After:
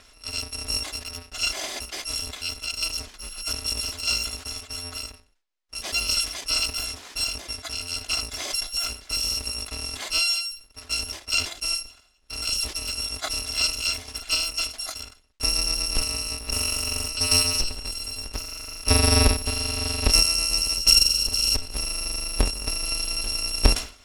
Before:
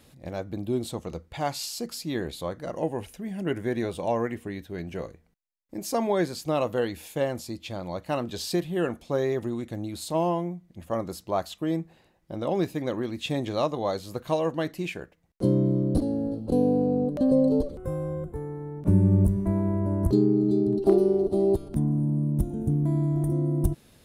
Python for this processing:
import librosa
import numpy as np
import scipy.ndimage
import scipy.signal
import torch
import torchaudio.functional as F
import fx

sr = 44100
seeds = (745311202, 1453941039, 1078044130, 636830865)

p1 = fx.bit_reversed(x, sr, seeds[0], block=256)
p2 = fx.dynamic_eq(p1, sr, hz=1600.0, q=0.76, threshold_db=-47.0, ratio=4.0, max_db=-5)
p3 = fx.level_steps(p2, sr, step_db=20)
p4 = p2 + (p3 * librosa.db_to_amplitude(-1.5))
p5 = scipy.signal.sosfilt(scipy.signal.butter(2, 5400.0, 'lowpass', fs=sr, output='sos'), p4)
p6 = fx.peak_eq(p5, sr, hz=130.0, db=-14.5, octaves=1.1)
p7 = fx.sustainer(p6, sr, db_per_s=140.0)
y = p7 * librosa.db_to_amplitude(7.0)